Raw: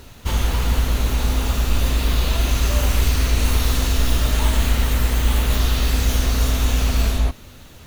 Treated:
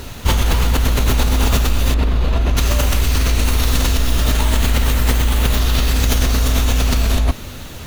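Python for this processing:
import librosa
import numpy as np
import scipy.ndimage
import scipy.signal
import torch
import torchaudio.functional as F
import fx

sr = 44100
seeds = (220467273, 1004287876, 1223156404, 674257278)

p1 = fx.over_compress(x, sr, threshold_db=-22.0, ratio=-0.5)
p2 = x + F.gain(torch.from_numpy(p1), 3.0).numpy()
p3 = fx.lowpass(p2, sr, hz=1200.0, slope=6, at=(1.94, 2.57))
y = F.gain(torch.from_numpy(p3), -1.0).numpy()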